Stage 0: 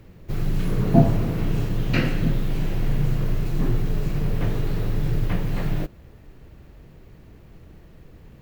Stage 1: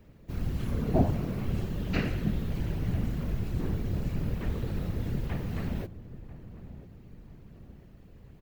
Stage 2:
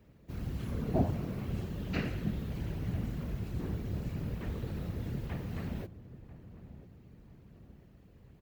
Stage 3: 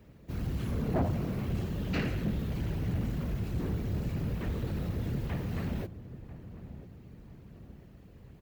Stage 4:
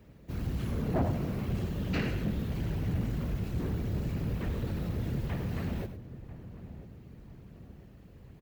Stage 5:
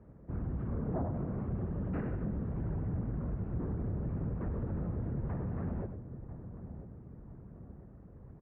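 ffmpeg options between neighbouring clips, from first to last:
-filter_complex "[0:a]afftfilt=real='hypot(re,im)*cos(2*PI*random(0))':imag='hypot(re,im)*sin(2*PI*random(1))':win_size=512:overlap=0.75,asplit=2[a][b];[b]adelay=992,lowpass=f=880:p=1,volume=-14.5dB,asplit=2[c][d];[d]adelay=992,lowpass=f=880:p=1,volume=0.54,asplit=2[e][f];[f]adelay=992,lowpass=f=880:p=1,volume=0.54,asplit=2[g][h];[h]adelay=992,lowpass=f=880:p=1,volume=0.54,asplit=2[i][j];[j]adelay=992,lowpass=f=880:p=1,volume=0.54[k];[a][c][e][g][i][k]amix=inputs=6:normalize=0,volume=-2dB"
-af "highpass=44,volume=-4.5dB"
-af "asoftclip=type=tanh:threshold=-28.5dB,volume=5dB"
-af "aecho=1:1:100:0.266"
-af "lowpass=f=1.4k:w=0.5412,lowpass=f=1.4k:w=1.3066,alimiter=level_in=4.5dB:limit=-24dB:level=0:latency=1:release=119,volume=-4.5dB"

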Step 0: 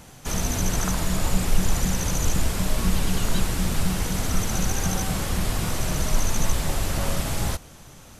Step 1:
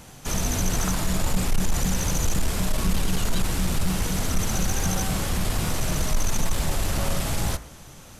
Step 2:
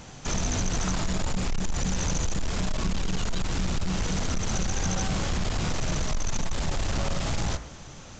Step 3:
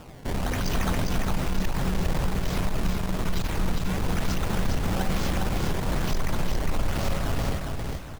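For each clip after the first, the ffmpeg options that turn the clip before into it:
-af "asoftclip=type=tanh:threshold=-15.5dB,bandreject=f=57.56:t=h:w=4,bandreject=f=115.12:t=h:w=4,bandreject=f=172.68:t=h:w=4,bandreject=f=230.24:t=h:w=4,bandreject=f=287.8:t=h:w=4,bandreject=f=345.36:t=h:w=4,bandreject=f=402.92:t=h:w=4,bandreject=f=460.48:t=h:w=4,bandreject=f=518.04:t=h:w=4,bandreject=f=575.6:t=h:w=4,bandreject=f=633.16:t=h:w=4,bandreject=f=690.72:t=h:w=4,bandreject=f=748.28:t=h:w=4,bandreject=f=805.84:t=h:w=4,bandreject=f=863.4:t=h:w=4,bandreject=f=920.96:t=h:w=4,bandreject=f=978.52:t=h:w=4,bandreject=f=1.03608k:t=h:w=4,bandreject=f=1.09364k:t=h:w=4,bandreject=f=1.1512k:t=h:w=4,bandreject=f=1.20876k:t=h:w=4,bandreject=f=1.26632k:t=h:w=4,bandreject=f=1.32388k:t=h:w=4,bandreject=f=1.38144k:t=h:w=4,bandreject=f=1.439k:t=h:w=4,bandreject=f=1.49656k:t=h:w=4,bandreject=f=1.55412k:t=h:w=4,bandreject=f=1.61168k:t=h:w=4,bandreject=f=1.66924k:t=h:w=4,bandreject=f=1.7268k:t=h:w=4,bandreject=f=1.78436k:t=h:w=4,bandreject=f=1.84192k:t=h:w=4,bandreject=f=1.89948k:t=h:w=4,bandreject=f=1.95704k:t=h:w=4,bandreject=f=2.0146k:t=h:w=4,bandreject=f=2.07216k:t=h:w=4,bandreject=f=2.12972k:t=h:w=4,bandreject=f=2.18728k:t=h:w=4,bandreject=f=2.24484k:t=h:w=4,bandreject=f=2.3024k:t=h:w=4,volume=1.5dB"
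-af "acompressor=threshold=-21dB:ratio=6,aresample=16000,asoftclip=type=tanh:threshold=-21.5dB,aresample=44100,volume=1.5dB"
-filter_complex "[0:a]acrusher=samples=20:mix=1:aa=0.000001:lfo=1:lforange=32:lforate=1.1,asplit=2[a][b];[b]aecho=0:1:405|810|1215|1620:0.668|0.174|0.0452|0.0117[c];[a][c]amix=inputs=2:normalize=0"

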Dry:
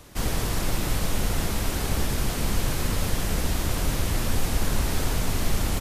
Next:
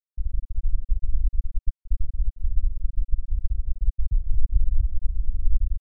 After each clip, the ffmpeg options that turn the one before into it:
-af "afftfilt=real='re*gte(hypot(re,im),0.794)':imag='im*gte(hypot(re,im),0.794)':win_size=1024:overlap=0.75,equalizer=f=1.6k:t=o:w=0.34:g=-14.5,volume=7.5dB"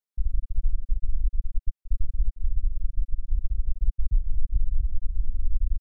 -af "aecho=1:1:4.9:0.35,alimiter=limit=-12.5dB:level=0:latency=1:release=205"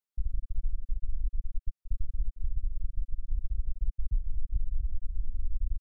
-af "acompressor=threshold=-20dB:ratio=3,volume=-3dB"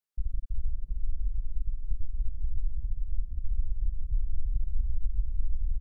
-af "aecho=1:1:340|646|921.4|1169|1392:0.631|0.398|0.251|0.158|0.1"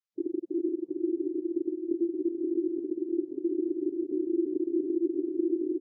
-af "aeval=exprs='val(0)*sin(2*PI*340*n/s)':c=same,volume=-2.5dB" -ar 16000 -c:a libvorbis -b:a 64k

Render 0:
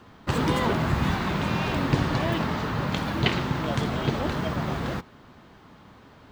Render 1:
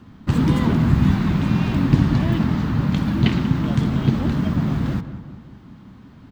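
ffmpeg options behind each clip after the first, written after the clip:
-filter_complex "[0:a]lowshelf=f=340:t=q:w=1.5:g=9.5,asplit=2[a][b];[b]adelay=189,lowpass=f=2k:p=1,volume=-11.5dB,asplit=2[c][d];[d]adelay=189,lowpass=f=2k:p=1,volume=0.52,asplit=2[e][f];[f]adelay=189,lowpass=f=2k:p=1,volume=0.52,asplit=2[g][h];[h]adelay=189,lowpass=f=2k:p=1,volume=0.52,asplit=2[i][j];[j]adelay=189,lowpass=f=2k:p=1,volume=0.52,asplit=2[k][l];[l]adelay=189,lowpass=f=2k:p=1,volume=0.52[m];[c][e][g][i][k][m]amix=inputs=6:normalize=0[n];[a][n]amix=inputs=2:normalize=0,volume=-2dB"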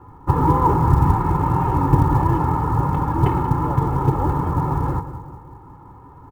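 -af "lowpass=f=1k:t=q:w=5.4,aecho=1:1:2.3:1,acrusher=bits=9:mode=log:mix=0:aa=0.000001,volume=-1dB"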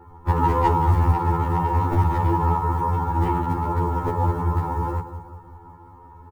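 -af "aecho=1:1:2.2:0.47,aeval=exprs='clip(val(0),-1,0.282)':c=same,afftfilt=real='re*2*eq(mod(b,4),0)':imag='im*2*eq(mod(b,4),0)':win_size=2048:overlap=0.75,volume=-1.5dB"

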